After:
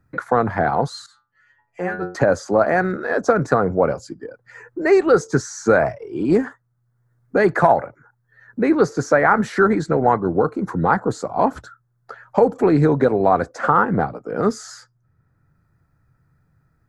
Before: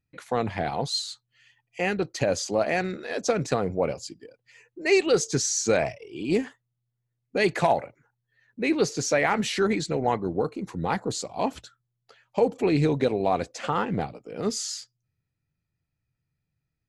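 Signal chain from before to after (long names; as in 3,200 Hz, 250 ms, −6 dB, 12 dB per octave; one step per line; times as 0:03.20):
high shelf with overshoot 2,000 Hz −11 dB, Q 3
0:01.06–0:02.15: stiff-string resonator 88 Hz, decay 0.4 s, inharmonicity 0.002
multiband upward and downward compressor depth 40%
level +7 dB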